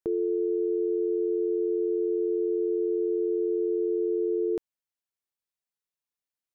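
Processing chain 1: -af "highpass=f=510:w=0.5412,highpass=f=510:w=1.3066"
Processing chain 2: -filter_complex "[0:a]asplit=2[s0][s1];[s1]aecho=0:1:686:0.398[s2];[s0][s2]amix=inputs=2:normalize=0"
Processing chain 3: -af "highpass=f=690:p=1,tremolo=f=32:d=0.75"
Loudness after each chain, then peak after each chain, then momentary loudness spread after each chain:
-36.0 LUFS, -26.0 LUFS, -37.0 LUFS; -26.5 dBFS, -18.5 dBFS, -26.5 dBFS; 0 LU, 10 LU, 0 LU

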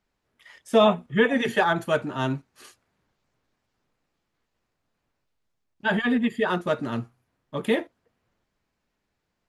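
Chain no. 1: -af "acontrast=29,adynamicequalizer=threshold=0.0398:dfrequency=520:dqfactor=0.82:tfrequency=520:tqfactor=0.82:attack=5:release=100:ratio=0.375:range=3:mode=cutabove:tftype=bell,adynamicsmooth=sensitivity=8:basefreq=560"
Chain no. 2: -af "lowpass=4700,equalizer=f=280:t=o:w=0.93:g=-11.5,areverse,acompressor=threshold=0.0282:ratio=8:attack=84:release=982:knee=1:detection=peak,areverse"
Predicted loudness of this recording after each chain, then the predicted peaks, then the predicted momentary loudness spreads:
-20.5 LUFS, -34.0 LUFS; -4.0 dBFS, -17.0 dBFS; 12 LU, 11 LU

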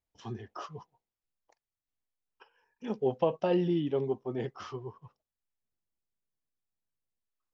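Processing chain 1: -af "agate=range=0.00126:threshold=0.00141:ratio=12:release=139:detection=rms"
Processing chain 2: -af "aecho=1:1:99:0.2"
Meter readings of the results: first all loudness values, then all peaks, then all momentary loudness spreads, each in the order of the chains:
-32.5 LUFS, -32.5 LUFS; -15.0 dBFS, -15.0 dBFS; 17 LU, 17 LU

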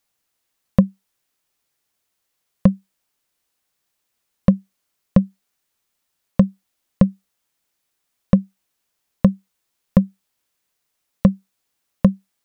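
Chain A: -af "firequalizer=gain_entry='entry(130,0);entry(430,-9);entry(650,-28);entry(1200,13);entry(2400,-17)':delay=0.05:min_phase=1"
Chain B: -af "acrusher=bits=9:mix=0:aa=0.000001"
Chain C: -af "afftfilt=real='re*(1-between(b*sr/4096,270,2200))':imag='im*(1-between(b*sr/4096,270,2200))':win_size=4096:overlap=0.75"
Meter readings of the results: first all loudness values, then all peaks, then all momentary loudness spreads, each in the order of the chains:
-22.5 LUFS, -20.5 LUFS, -21.0 LUFS; -1.5 dBFS, -1.5 dBFS, -2.5 dBFS; 6 LU, 6 LU, 6 LU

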